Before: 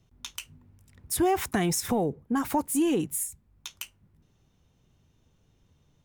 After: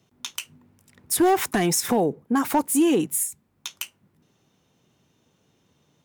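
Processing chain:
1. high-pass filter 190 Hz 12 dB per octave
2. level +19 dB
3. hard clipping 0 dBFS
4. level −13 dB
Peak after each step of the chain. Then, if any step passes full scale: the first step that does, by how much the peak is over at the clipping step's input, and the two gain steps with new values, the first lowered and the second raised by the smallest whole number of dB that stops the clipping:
−13.0, +6.0, 0.0, −13.0 dBFS
step 2, 6.0 dB
step 2 +13 dB, step 4 −7 dB

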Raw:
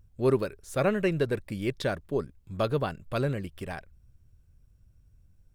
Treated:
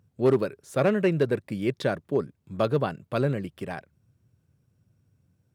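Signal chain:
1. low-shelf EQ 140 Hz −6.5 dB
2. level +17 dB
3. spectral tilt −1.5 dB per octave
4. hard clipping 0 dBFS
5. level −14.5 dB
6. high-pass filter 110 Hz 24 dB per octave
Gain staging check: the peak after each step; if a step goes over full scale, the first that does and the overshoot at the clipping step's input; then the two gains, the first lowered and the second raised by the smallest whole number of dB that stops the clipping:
−14.0, +3.0, +6.0, 0.0, −14.5, −10.0 dBFS
step 2, 6.0 dB
step 2 +11 dB, step 5 −8.5 dB

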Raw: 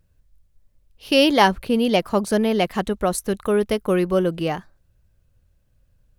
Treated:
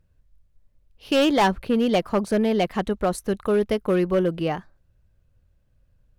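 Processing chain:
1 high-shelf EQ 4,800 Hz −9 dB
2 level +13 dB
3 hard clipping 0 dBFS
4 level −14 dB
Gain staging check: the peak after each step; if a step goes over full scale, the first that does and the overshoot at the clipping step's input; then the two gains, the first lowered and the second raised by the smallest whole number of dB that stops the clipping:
−4.0, +9.0, 0.0, −14.0 dBFS
step 2, 9.0 dB
step 2 +4 dB, step 4 −5 dB

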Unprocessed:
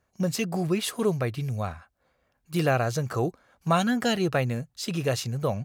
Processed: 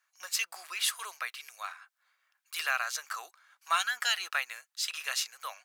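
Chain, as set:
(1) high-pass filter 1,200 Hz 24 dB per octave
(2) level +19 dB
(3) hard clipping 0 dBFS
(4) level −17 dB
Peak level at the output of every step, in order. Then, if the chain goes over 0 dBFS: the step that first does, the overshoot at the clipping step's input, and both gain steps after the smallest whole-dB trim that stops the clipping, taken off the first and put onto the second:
−15.5, +3.5, 0.0, −17.0 dBFS
step 2, 3.5 dB
step 2 +15 dB, step 4 −13 dB

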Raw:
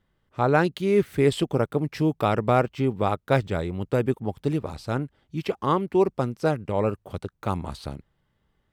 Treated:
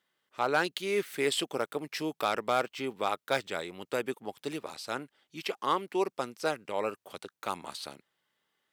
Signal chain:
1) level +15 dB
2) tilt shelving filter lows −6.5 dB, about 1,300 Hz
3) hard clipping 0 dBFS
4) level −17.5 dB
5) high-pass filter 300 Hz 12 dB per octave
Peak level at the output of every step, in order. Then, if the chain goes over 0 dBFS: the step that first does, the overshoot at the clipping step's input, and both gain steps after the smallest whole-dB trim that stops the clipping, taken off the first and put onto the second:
+8.0, +8.5, 0.0, −17.5, −13.0 dBFS
step 1, 8.5 dB
step 1 +6 dB, step 4 −8.5 dB

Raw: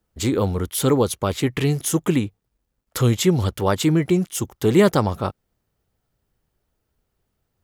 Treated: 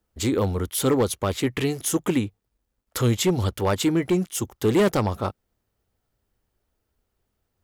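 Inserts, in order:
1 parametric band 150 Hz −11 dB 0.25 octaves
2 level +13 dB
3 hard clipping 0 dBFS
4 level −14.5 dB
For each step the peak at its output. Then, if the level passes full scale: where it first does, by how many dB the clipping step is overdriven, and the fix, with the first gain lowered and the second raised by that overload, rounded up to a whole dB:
−4.5, +8.5, 0.0, −14.5 dBFS
step 2, 8.5 dB
step 2 +4 dB, step 4 −5.5 dB

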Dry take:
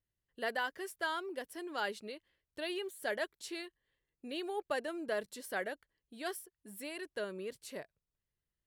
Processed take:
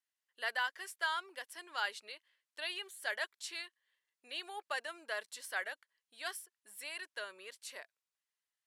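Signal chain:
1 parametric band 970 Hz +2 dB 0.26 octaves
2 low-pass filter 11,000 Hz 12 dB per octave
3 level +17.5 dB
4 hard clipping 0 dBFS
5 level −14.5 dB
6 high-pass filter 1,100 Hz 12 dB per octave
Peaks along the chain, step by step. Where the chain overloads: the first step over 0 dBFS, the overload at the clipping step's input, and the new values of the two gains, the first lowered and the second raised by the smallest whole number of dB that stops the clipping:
−22.0, −22.0, −4.5, −4.5, −19.0, −22.0 dBFS
no step passes full scale

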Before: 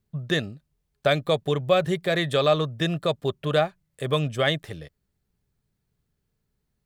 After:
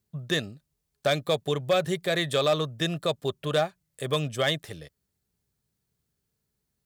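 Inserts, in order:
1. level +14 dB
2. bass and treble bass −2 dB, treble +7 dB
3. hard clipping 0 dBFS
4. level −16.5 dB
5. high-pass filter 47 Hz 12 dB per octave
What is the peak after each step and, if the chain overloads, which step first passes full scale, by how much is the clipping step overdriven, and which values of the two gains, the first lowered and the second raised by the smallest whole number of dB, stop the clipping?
+7.5, +7.5, 0.0, −16.5, −14.5 dBFS
step 1, 7.5 dB
step 1 +6 dB, step 4 −8.5 dB

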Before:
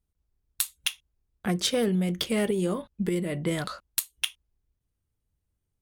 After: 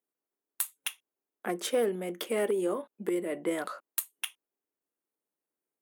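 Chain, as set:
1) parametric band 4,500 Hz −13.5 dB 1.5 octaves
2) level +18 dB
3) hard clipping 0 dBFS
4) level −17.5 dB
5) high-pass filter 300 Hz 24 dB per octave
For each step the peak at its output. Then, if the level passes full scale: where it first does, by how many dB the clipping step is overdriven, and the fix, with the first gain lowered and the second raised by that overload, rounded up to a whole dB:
−12.0, +6.0, 0.0, −17.5, −16.0 dBFS
step 2, 6.0 dB
step 2 +12 dB, step 4 −11.5 dB

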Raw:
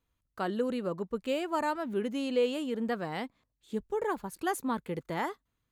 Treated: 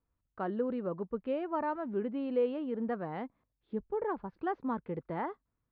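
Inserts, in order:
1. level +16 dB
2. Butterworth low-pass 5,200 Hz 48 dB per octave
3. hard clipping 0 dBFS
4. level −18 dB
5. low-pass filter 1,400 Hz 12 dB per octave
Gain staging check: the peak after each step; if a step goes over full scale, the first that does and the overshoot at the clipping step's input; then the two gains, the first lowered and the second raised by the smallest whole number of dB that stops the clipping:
−1.5, −1.5, −1.5, −19.5, −20.0 dBFS
no step passes full scale

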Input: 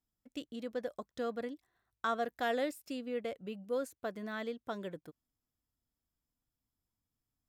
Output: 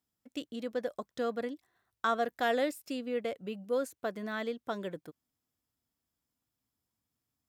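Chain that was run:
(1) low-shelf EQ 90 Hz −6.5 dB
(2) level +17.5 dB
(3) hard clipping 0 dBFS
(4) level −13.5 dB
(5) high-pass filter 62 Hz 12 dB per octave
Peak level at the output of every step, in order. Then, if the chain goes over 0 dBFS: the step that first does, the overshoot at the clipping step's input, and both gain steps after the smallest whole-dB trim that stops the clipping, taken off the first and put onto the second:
−21.5, −4.0, −4.0, −17.5, −17.0 dBFS
no step passes full scale

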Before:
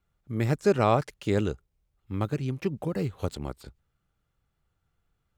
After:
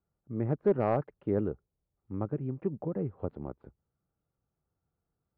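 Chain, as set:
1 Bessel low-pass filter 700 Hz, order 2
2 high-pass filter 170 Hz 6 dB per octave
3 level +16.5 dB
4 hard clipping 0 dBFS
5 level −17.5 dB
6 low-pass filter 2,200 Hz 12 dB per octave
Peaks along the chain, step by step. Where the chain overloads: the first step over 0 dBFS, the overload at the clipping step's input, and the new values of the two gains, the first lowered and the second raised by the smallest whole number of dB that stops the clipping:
−12.5, −12.0, +4.5, 0.0, −17.5, −17.0 dBFS
step 3, 4.5 dB
step 3 +11.5 dB, step 5 −12.5 dB

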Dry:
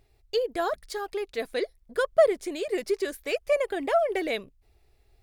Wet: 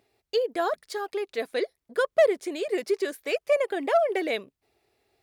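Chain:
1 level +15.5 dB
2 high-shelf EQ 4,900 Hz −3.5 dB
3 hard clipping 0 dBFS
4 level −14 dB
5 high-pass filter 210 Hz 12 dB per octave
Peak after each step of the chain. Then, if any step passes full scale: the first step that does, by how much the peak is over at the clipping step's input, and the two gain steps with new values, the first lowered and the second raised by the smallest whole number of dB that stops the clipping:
+5.5, +5.5, 0.0, −14.0, −11.0 dBFS
step 1, 5.5 dB
step 1 +9.5 dB, step 4 −8 dB

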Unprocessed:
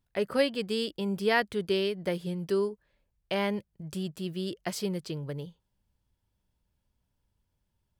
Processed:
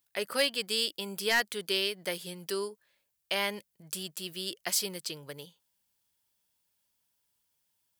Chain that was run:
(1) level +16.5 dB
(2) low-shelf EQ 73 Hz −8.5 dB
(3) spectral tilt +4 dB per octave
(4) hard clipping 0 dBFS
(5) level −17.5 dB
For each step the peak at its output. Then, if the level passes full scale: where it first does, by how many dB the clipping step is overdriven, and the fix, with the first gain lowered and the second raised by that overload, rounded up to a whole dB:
+4.0, +4.5, +9.5, 0.0, −17.5 dBFS
step 1, 9.5 dB
step 1 +6.5 dB, step 5 −7.5 dB

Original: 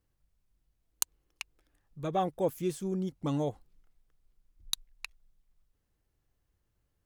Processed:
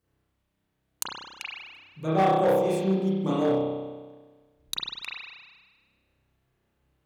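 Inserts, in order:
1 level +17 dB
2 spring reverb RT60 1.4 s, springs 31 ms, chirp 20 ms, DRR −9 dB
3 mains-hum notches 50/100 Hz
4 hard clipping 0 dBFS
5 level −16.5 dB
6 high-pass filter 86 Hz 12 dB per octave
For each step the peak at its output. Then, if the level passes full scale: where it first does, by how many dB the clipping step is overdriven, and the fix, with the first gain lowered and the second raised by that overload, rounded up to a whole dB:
+5.5, +7.0, +7.0, 0.0, −16.5, −13.5 dBFS
step 1, 7.0 dB
step 1 +10 dB, step 5 −9.5 dB

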